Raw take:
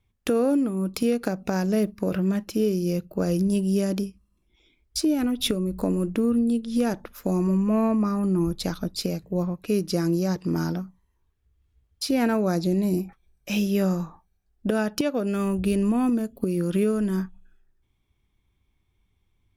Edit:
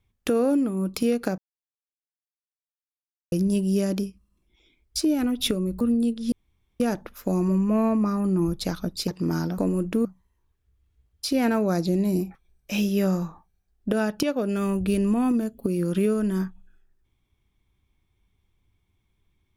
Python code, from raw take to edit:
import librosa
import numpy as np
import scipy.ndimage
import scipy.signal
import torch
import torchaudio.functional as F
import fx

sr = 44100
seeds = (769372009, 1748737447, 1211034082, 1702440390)

y = fx.edit(x, sr, fx.silence(start_s=1.38, length_s=1.94),
    fx.move(start_s=5.81, length_s=0.47, to_s=10.83),
    fx.insert_room_tone(at_s=6.79, length_s=0.48),
    fx.cut(start_s=9.07, length_s=1.26), tone=tone)